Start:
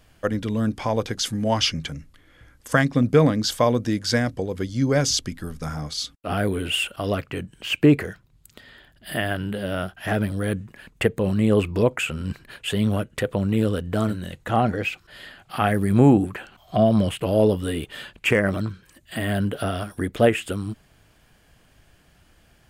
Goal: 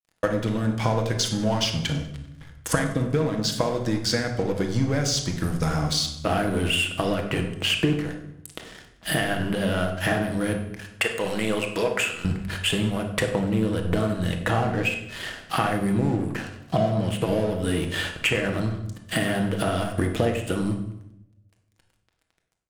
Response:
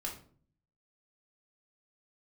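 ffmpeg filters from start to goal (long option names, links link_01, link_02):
-filter_complex "[0:a]asettb=1/sr,asplit=3[link_01][link_02][link_03];[link_01]atrim=end=10.564[link_04];[link_02]atrim=start=10.56:end=12.25,asetpts=PTS-STARTPTS,afade=type=in:duration=0.004:curve=qsin,afade=type=out:start_time=1.686:duration=0.004:curve=qsin,highpass=frequency=1300:poles=1[link_05];[link_03]atrim=start=12.246[link_06];[link_04][link_05]acrossfade=duration=0.004:curve1=hsin:curve2=qsin[link_07];[link_07][link_06]acrossfade=duration=0.004:curve1=qsin:curve2=hsin,acompressor=threshold=-31dB:ratio=16,aeval=exprs='sgn(val(0))*max(abs(val(0))-0.00422,0)':channel_layout=same,aecho=1:1:97|194|291|388:0.0944|0.0519|0.0286|0.0157,asplit=2[link_08][link_09];[1:a]atrim=start_sample=2205,asetrate=22932,aresample=44100[link_10];[link_09][link_10]afir=irnorm=-1:irlink=0,volume=-1dB[link_11];[link_08][link_11]amix=inputs=2:normalize=0,volume=5.5dB"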